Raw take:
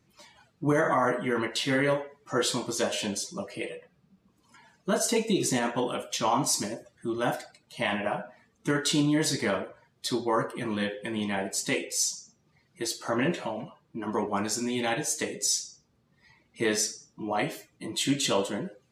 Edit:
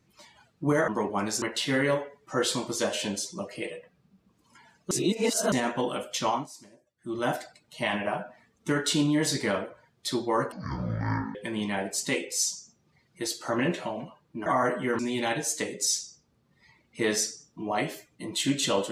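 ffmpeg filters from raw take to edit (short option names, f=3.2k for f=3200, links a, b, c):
-filter_complex "[0:a]asplit=11[a][b][c][d][e][f][g][h][i][j][k];[a]atrim=end=0.882[l];[b]atrim=start=14.058:end=14.602[m];[c]atrim=start=1.408:end=4.902[n];[d]atrim=start=4.898:end=5.512,asetpts=PTS-STARTPTS,areverse[o];[e]atrim=start=5.508:end=6.47,asetpts=PTS-STARTPTS,afade=t=out:st=0.762:d=0.2:silence=0.0944061[p];[f]atrim=start=6.47:end=6.96,asetpts=PTS-STARTPTS,volume=-20.5dB[q];[g]atrim=start=6.96:end=10.514,asetpts=PTS-STARTPTS,afade=t=in:d=0.2:silence=0.0944061[r];[h]atrim=start=10.51:end=10.95,asetpts=PTS-STARTPTS,asetrate=23373,aresample=44100,atrim=end_sample=36611,asetpts=PTS-STARTPTS[s];[i]atrim=start=10.946:end=14.062[t];[j]atrim=start=0.878:end=1.412[u];[k]atrim=start=14.598[v];[l][m]acrossfade=d=0.004:c1=hsin:c2=hsin[w];[w][n]acrossfade=d=0.004:c1=hsin:c2=hsin[x];[x][o]acrossfade=d=0.004:c1=hsin:c2=hsin[y];[p][q][r]concat=n=3:v=0:a=1[z];[y][z]acrossfade=d=0.004:c1=hsin:c2=hsin[aa];[aa][s]acrossfade=d=0.004:c1=hsin:c2=hsin[ab];[ab][t]acrossfade=d=0.004:c1=hsin:c2=hsin[ac];[ac][u]acrossfade=d=0.004:c1=hsin:c2=hsin[ad];[ad][v]acrossfade=d=0.004:c1=hsin:c2=hsin"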